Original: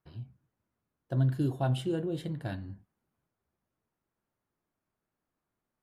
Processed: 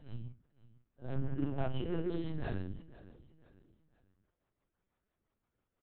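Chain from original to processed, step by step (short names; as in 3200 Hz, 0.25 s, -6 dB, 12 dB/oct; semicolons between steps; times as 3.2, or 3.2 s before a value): phase scrambler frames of 0.2 s; 1.15–2.06 Chebyshev low-pass 3000 Hz, order 8; compressor 6:1, threshold -29 dBFS, peak gain reduction 6.5 dB; in parallel at -6.5 dB: wavefolder -39 dBFS; on the sum: rotary speaker horn 6 Hz; feedback echo 0.5 s, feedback 40%, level -19 dB; LPC vocoder at 8 kHz pitch kept; gain +1 dB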